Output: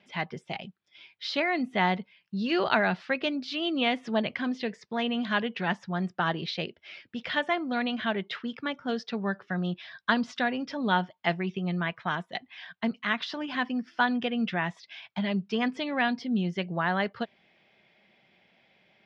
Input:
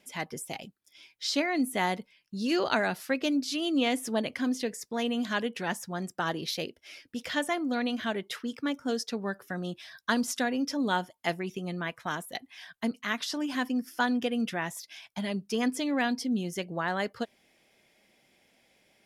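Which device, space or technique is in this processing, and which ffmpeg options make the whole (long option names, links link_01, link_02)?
guitar cabinet: -af "highpass=88,equalizer=frequency=180:width_type=q:width=4:gain=4,equalizer=frequency=280:width_type=q:width=4:gain=-9,equalizer=frequency=490:width_type=q:width=4:gain=-5,lowpass=frequency=3800:width=0.5412,lowpass=frequency=3800:width=1.3066,volume=3.5dB"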